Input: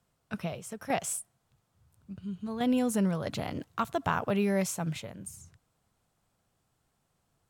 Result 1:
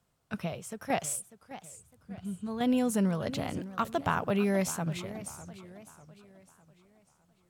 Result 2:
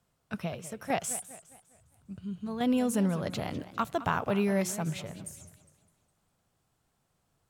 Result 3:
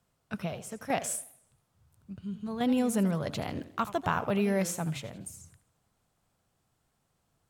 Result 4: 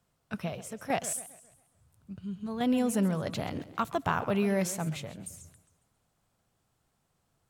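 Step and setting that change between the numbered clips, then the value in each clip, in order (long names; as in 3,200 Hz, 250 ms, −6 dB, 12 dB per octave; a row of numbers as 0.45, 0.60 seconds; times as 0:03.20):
feedback echo with a swinging delay time, delay time: 602, 203, 81, 136 milliseconds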